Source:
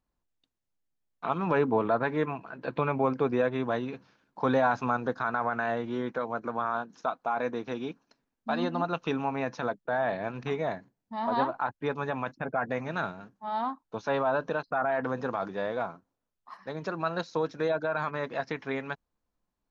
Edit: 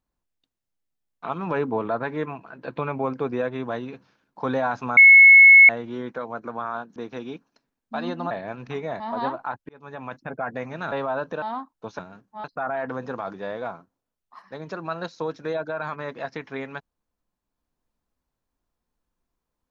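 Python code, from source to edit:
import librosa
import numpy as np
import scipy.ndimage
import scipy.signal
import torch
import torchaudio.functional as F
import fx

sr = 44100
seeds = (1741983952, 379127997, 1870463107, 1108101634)

y = fx.edit(x, sr, fx.bleep(start_s=4.97, length_s=0.72, hz=2190.0, db=-6.5),
    fx.cut(start_s=6.96, length_s=0.55),
    fx.cut(start_s=8.86, length_s=1.21),
    fx.cut(start_s=10.76, length_s=0.39),
    fx.fade_in_span(start_s=11.84, length_s=0.5),
    fx.swap(start_s=13.07, length_s=0.45, other_s=14.09, other_length_s=0.5), tone=tone)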